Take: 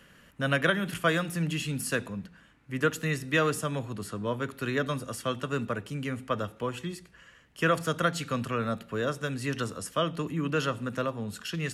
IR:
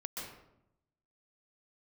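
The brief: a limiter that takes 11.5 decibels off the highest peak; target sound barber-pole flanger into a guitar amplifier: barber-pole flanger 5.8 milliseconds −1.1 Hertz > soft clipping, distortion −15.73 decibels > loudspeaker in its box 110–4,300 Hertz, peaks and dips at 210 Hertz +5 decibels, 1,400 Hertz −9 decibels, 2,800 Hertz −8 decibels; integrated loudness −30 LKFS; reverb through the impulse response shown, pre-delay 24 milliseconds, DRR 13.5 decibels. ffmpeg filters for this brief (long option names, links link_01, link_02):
-filter_complex "[0:a]alimiter=limit=-23.5dB:level=0:latency=1,asplit=2[link_01][link_02];[1:a]atrim=start_sample=2205,adelay=24[link_03];[link_02][link_03]afir=irnorm=-1:irlink=0,volume=-13.5dB[link_04];[link_01][link_04]amix=inputs=2:normalize=0,asplit=2[link_05][link_06];[link_06]adelay=5.8,afreqshift=-1.1[link_07];[link_05][link_07]amix=inputs=2:normalize=1,asoftclip=threshold=-30dB,highpass=110,equalizer=frequency=210:width_type=q:width=4:gain=5,equalizer=frequency=1400:width_type=q:width=4:gain=-9,equalizer=frequency=2800:width_type=q:width=4:gain=-8,lowpass=frequency=4300:width=0.5412,lowpass=frequency=4300:width=1.3066,volume=9.5dB"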